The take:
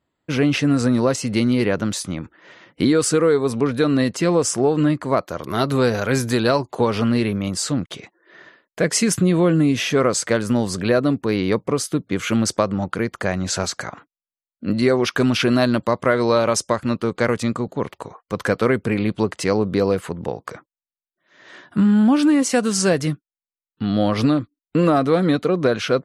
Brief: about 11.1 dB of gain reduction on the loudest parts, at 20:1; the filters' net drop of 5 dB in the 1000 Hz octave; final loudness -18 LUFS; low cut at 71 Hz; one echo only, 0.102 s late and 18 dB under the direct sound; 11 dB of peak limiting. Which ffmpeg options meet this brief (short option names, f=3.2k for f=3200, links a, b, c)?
-af "highpass=71,equalizer=f=1k:t=o:g=-7,acompressor=threshold=-24dB:ratio=20,alimiter=limit=-22dB:level=0:latency=1,aecho=1:1:102:0.126,volume=14dB"